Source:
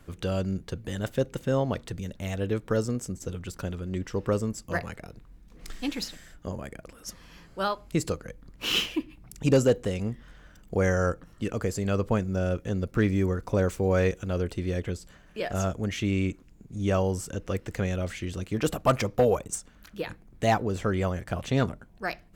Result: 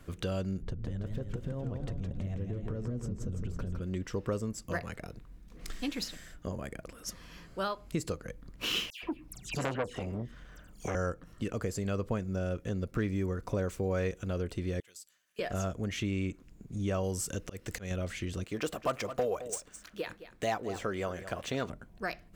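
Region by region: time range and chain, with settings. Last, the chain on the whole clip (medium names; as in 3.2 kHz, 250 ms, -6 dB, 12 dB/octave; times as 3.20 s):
0.62–3.81 s: tilt EQ -3.5 dB/octave + compression 10:1, threshold -30 dBFS + modulated delay 165 ms, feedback 54%, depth 189 cents, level -5 dB
8.90–10.95 s: phase dispersion lows, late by 126 ms, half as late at 2.2 kHz + transformer saturation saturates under 1.5 kHz
14.80–15.39 s: differentiator + upward expansion, over -58 dBFS
17.03–17.91 s: treble shelf 3.2 kHz +8.5 dB + slow attack 257 ms
18.44–21.70 s: median filter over 3 samples + tone controls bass -10 dB, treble +1 dB + delay 213 ms -16 dB
whole clip: band-stop 850 Hz, Q 12; compression 2:1, threshold -34 dBFS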